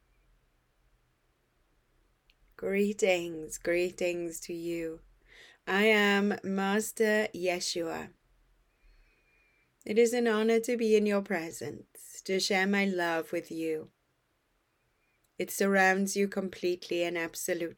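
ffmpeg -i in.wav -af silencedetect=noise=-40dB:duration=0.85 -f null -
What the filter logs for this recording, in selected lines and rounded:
silence_start: 0.00
silence_end: 2.59 | silence_duration: 2.59
silence_start: 8.06
silence_end: 9.82 | silence_duration: 1.75
silence_start: 13.83
silence_end: 15.40 | silence_duration: 1.57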